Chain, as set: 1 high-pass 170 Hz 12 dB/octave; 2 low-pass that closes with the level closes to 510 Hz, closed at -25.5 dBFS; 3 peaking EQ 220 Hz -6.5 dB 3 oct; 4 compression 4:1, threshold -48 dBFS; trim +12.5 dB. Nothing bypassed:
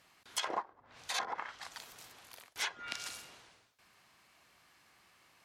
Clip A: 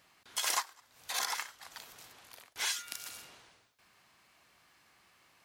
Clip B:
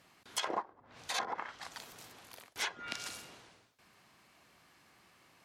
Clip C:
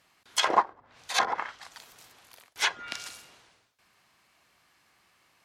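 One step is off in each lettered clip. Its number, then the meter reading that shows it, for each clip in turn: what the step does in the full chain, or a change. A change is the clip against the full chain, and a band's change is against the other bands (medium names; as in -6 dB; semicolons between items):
2, 8 kHz band +9.0 dB; 3, 125 Hz band +4.5 dB; 4, mean gain reduction 6.0 dB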